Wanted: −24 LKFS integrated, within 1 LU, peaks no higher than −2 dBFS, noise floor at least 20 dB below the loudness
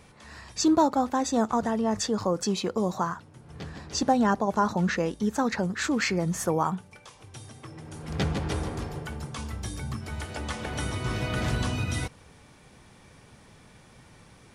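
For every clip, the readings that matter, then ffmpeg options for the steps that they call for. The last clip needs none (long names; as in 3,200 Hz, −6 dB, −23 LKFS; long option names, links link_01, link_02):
integrated loudness −28.0 LKFS; sample peak −11.0 dBFS; target loudness −24.0 LKFS
→ -af "volume=4dB"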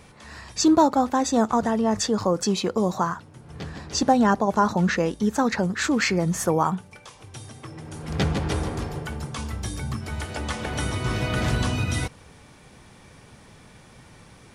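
integrated loudness −24.0 LKFS; sample peak −7.0 dBFS; background noise floor −50 dBFS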